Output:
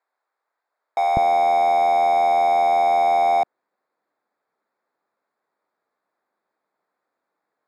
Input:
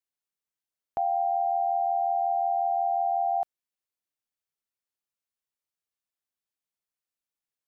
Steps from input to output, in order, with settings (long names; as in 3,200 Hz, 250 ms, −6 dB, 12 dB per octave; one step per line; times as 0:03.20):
adaptive Wiener filter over 15 samples
mid-hump overdrive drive 27 dB, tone 1,000 Hz, clips at −20.5 dBFS
high-pass filter 620 Hz 12 dB per octave, from 0:01.17 200 Hz
level +9 dB